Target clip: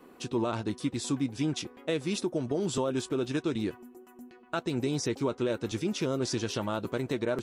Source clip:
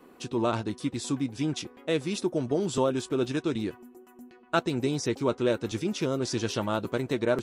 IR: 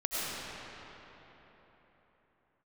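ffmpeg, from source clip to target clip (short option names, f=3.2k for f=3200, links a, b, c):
-af "alimiter=limit=-20dB:level=0:latency=1:release=137"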